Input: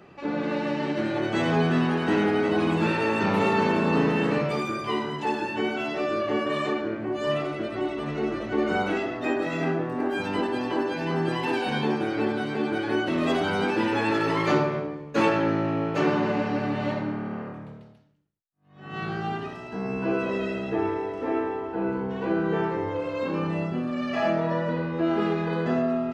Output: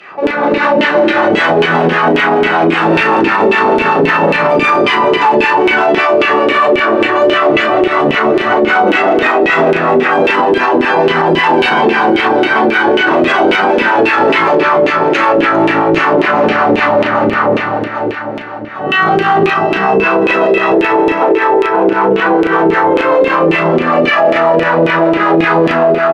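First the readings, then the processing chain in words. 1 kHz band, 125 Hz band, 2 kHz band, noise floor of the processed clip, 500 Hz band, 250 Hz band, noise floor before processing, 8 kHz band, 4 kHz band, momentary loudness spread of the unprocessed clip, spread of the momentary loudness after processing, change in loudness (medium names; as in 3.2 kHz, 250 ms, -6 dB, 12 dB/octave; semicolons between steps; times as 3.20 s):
+19.5 dB, +7.5 dB, +20.0 dB, -16 dBFS, +16.5 dB, +12.0 dB, -42 dBFS, no reading, +16.5 dB, 7 LU, 2 LU, +16.0 dB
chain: compression 6:1, threshold -27 dBFS, peak gain reduction 10 dB; echo whose repeats swap between lows and highs 200 ms, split 950 Hz, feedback 79%, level -5.5 dB; overload inside the chain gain 25 dB; LFO band-pass saw down 3.7 Hz 370–2800 Hz; treble shelf 5.2 kHz +6 dB; doubling 36 ms -8 dB; level rider gain up to 6 dB; harmonic tremolo 5.2 Hz, depth 50%, crossover 650 Hz; loudness maximiser +30 dB; trim -1 dB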